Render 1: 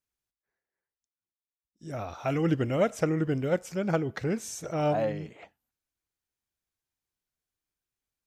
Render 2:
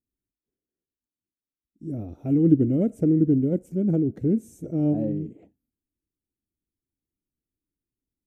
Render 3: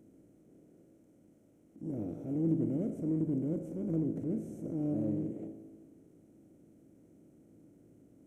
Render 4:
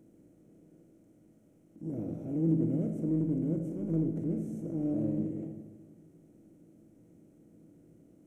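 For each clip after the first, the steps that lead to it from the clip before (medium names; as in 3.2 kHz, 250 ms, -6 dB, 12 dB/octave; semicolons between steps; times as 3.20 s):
FFT filter 150 Hz 0 dB, 290 Hz +7 dB, 1.1 kHz -30 dB, 2.7 kHz -26 dB, 4.9 kHz -30 dB, 9.3 kHz -13 dB; trim +5.5 dB
spectral levelling over time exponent 0.4; transient shaper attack -6 dB, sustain 0 dB; feedback comb 54 Hz, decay 1.5 s, harmonics all, mix 70%; trim -7 dB
simulated room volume 460 m³, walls mixed, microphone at 0.63 m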